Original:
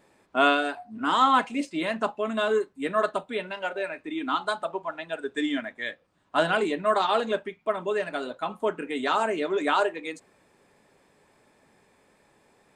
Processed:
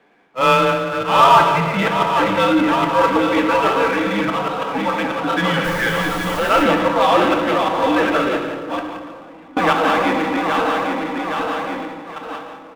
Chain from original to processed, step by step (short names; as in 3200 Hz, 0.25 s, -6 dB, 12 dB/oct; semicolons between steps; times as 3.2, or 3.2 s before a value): regenerating reverse delay 0.409 s, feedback 73%, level -5.5 dB; gate with hold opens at -30 dBFS; bell 210 Hz -13 dB 1.1 oct; auto swell 0.166 s; mistuned SSB -120 Hz 270–3500 Hz; 5.63–6.63 added noise pink -46 dBFS; 8.36–9.57 flipped gate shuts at -24 dBFS, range -38 dB; echo 0.174 s -13.5 dB; on a send at -5 dB: reverb RT60 1.6 s, pre-delay 4 ms; on the sum: power-law curve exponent 0.7; gain +5.5 dB